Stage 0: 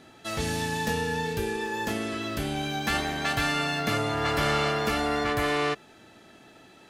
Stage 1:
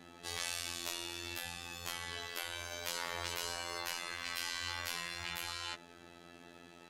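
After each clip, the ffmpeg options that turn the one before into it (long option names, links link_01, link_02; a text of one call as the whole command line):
ffmpeg -i in.wav -af "afftfilt=real='re*lt(hypot(re,im),0.0631)':imag='im*lt(hypot(re,im),0.0631)':win_size=1024:overlap=0.75,afftfilt=real='hypot(re,im)*cos(PI*b)':imag='0':win_size=2048:overlap=0.75" out.wav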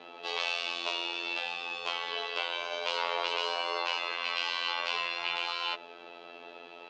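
ffmpeg -i in.wav -af "highpass=460,equalizer=frequency=460:width_type=q:width=4:gain=8,equalizer=frequency=660:width_type=q:width=4:gain=4,equalizer=frequency=1000:width_type=q:width=4:gain=5,equalizer=frequency=1800:width_type=q:width=4:gain=-9,equalizer=frequency=2700:width_type=q:width=4:gain=6,lowpass=frequency=4200:width=0.5412,lowpass=frequency=4200:width=1.3066,volume=8dB" out.wav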